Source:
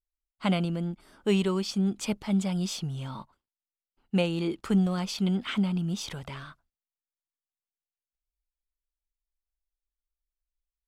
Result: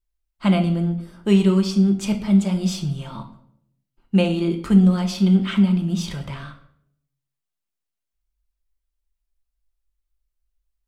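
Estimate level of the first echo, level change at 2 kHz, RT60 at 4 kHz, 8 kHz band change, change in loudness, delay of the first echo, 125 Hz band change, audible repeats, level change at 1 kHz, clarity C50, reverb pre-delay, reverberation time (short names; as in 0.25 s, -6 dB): none, +4.5 dB, 0.50 s, +3.5 dB, +9.5 dB, none, +9.5 dB, none, +5.0 dB, 10.5 dB, 3 ms, 0.70 s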